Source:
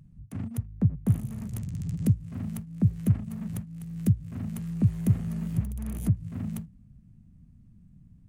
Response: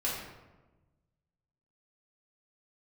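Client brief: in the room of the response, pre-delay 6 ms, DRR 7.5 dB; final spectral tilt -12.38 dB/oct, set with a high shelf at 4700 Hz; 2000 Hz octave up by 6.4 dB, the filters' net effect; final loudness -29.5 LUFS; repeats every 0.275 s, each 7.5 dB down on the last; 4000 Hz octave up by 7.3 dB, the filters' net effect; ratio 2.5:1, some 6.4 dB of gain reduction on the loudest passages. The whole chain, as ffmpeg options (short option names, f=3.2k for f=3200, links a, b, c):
-filter_complex "[0:a]equalizer=f=2k:t=o:g=5.5,equalizer=f=4k:t=o:g=5.5,highshelf=f=4.7k:g=4.5,acompressor=threshold=-26dB:ratio=2.5,aecho=1:1:275|550|825|1100|1375:0.422|0.177|0.0744|0.0312|0.0131,asplit=2[a][b];[1:a]atrim=start_sample=2205,adelay=6[c];[b][c]afir=irnorm=-1:irlink=0,volume=-14dB[d];[a][d]amix=inputs=2:normalize=0,volume=2dB"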